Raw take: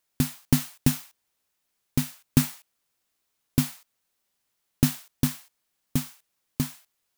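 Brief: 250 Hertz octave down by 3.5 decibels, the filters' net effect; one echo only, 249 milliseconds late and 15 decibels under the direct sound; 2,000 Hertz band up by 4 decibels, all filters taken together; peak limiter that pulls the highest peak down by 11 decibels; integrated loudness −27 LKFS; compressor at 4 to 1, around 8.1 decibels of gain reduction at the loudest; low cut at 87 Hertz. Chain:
high-pass filter 87 Hz
parametric band 250 Hz −4 dB
parametric band 2,000 Hz +5 dB
downward compressor 4 to 1, threshold −27 dBFS
brickwall limiter −19.5 dBFS
single-tap delay 249 ms −15 dB
level +13 dB

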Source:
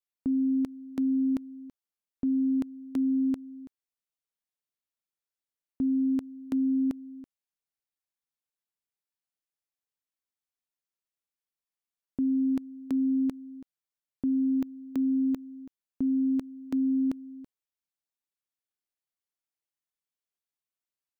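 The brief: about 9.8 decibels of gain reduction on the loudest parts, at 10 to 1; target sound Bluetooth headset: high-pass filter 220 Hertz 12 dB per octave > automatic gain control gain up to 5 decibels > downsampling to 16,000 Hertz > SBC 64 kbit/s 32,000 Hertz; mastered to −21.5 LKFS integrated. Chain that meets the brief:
downward compressor 10 to 1, threshold −34 dBFS
high-pass filter 220 Hz 12 dB per octave
automatic gain control gain up to 5 dB
downsampling to 16,000 Hz
level +17.5 dB
SBC 64 kbit/s 32,000 Hz

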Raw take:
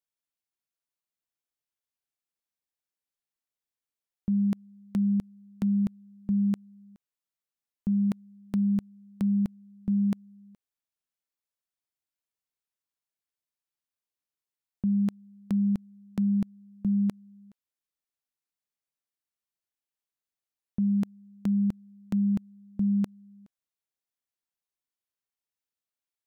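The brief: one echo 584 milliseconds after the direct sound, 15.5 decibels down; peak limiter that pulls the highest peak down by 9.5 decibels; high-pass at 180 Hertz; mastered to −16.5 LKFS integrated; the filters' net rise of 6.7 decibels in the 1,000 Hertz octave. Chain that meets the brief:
high-pass filter 180 Hz
parametric band 1,000 Hz +8.5 dB
brickwall limiter −28 dBFS
single-tap delay 584 ms −15.5 dB
level +20.5 dB

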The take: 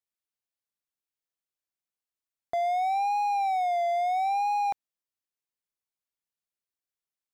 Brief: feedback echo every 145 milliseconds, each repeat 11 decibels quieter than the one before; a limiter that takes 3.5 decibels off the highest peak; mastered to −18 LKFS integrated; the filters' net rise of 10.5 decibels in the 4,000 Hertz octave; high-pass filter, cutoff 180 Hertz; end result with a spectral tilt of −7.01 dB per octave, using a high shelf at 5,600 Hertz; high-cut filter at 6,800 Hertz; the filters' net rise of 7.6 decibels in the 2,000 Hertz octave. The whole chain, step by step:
high-pass filter 180 Hz
low-pass filter 6,800 Hz
parametric band 2,000 Hz +5 dB
parametric band 4,000 Hz +8 dB
high-shelf EQ 5,600 Hz +8 dB
brickwall limiter −24 dBFS
repeating echo 145 ms, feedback 28%, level −11 dB
level +10.5 dB

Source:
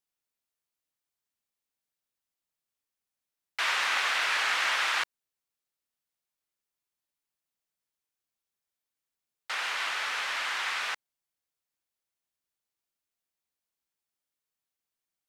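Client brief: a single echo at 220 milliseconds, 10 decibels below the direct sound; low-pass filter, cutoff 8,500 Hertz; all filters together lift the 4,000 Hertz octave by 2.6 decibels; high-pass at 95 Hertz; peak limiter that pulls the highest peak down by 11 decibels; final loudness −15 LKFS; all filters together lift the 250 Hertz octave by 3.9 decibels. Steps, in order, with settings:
high-pass filter 95 Hz
low-pass filter 8,500 Hz
parametric band 250 Hz +5.5 dB
parametric band 4,000 Hz +3.5 dB
brickwall limiter −25.5 dBFS
single-tap delay 220 ms −10 dB
level +18 dB

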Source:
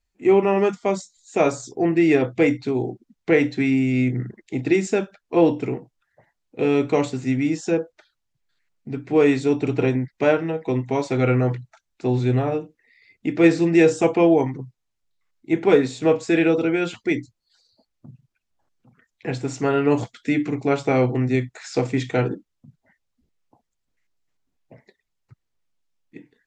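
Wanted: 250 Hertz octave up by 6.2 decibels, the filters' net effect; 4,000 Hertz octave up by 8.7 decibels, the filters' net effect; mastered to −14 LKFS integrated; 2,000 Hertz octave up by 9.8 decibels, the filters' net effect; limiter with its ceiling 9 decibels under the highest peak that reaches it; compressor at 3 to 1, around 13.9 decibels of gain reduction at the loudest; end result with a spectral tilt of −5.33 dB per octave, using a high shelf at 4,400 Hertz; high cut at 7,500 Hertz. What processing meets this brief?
low-pass filter 7,500 Hz
parametric band 250 Hz +8 dB
parametric band 2,000 Hz +9 dB
parametric band 4,000 Hz +6 dB
high-shelf EQ 4,400 Hz +4 dB
downward compressor 3 to 1, threshold −25 dBFS
level +16.5 dB
brickwall limiter −3.5 dBFS

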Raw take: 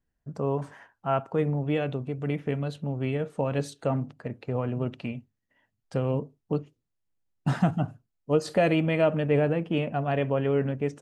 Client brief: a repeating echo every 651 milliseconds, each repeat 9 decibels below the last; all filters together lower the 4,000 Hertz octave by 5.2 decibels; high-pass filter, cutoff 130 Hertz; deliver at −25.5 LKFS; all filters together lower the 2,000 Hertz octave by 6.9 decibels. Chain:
high-pass filter 130 Hz
parametric band 2,000 Hz −8 dB
parametric band 4,000 Hz −3.5 dB
repeating echo 651 ms, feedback 35%, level −9 dB
level +3.5 dB

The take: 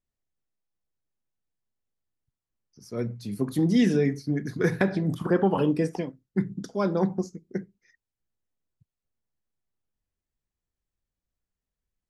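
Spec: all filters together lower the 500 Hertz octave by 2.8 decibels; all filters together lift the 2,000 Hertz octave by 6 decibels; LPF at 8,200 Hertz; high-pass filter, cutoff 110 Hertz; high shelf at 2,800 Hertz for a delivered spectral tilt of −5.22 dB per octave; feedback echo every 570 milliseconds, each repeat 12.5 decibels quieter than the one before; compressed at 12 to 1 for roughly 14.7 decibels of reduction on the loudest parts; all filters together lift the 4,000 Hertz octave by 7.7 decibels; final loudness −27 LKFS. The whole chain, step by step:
high-pass filter 110 Hz
low-pass filter 8,200 Hz
parametric band 500 Hz −4 dB
parametric band 2,000 Hz +5 dB
high-shelf EQ 2,800 Hz +5 dB
parametric band 4,000 Hz +4.5 dB
downward compressor 12 to 1, threshold −32 dBFS
repeating echo 570 ms, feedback 24%, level −12.5 dB
level +10.5 dB

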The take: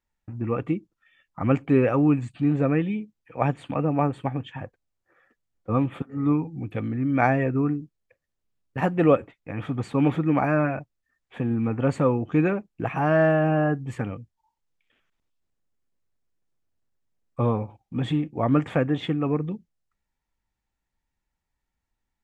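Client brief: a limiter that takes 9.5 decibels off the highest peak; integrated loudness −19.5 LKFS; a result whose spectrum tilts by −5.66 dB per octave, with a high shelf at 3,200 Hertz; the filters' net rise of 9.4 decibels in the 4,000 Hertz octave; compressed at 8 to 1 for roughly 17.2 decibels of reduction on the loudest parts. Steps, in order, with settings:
high-shelf EQ 3,200 Hz +7 dB
parametric band 4,000 Hz +7.5 dB
downward compressor 8 to 1, threshold −32 dBFS
level +18.5 dB
brickwall limiter −8.5 dBFS

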